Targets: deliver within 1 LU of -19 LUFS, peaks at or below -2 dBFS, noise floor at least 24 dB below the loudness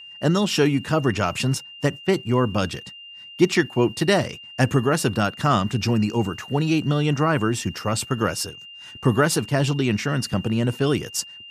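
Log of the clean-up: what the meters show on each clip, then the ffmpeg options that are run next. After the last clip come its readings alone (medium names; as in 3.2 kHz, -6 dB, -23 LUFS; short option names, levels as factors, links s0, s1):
steady tone 2.8 kHz; tone level -39 dBFS; loudness -22.5 LUFS; peak level -4.0 dBFS; loudness target -19.0 LUFS
-> -af "bandreject=f=2800:w=30"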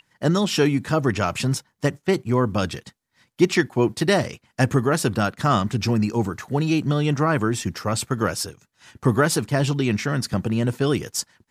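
steady tone not found; loudness -22.5 LUFS; peak level -4.0 dBFS; loudness target -19.0 LUFS
-> -af "volume=1.5,alimiter=limit=0.794:level=0:latency=1"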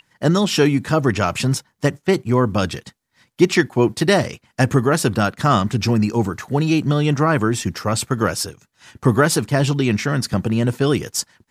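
loudness -19.0 LUFS; peak level -2.0 dBFS; noise floor -71 dBFS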